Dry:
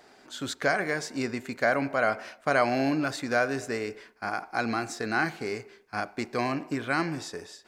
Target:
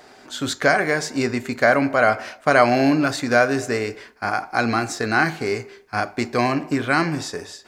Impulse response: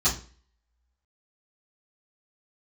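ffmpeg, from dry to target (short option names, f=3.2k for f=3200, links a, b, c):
-filter_complex "[0:a]asplit=2[a][b];[1:a]atrim=start_sample=2205,atrim=end_sample=3528[c];[b][c]afir=irnorm=-1:irlink=0,volume=-25.5dB[d];[a][d]amix=inputs=2:normalize=0,volume=8.5dB"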